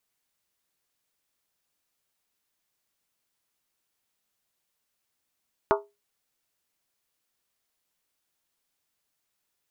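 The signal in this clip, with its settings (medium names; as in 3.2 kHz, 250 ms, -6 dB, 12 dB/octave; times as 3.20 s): skin hit, lowest mode 409 Hz, modes 8, decay 0.24 s, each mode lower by 1.5 dB, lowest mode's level -18 dB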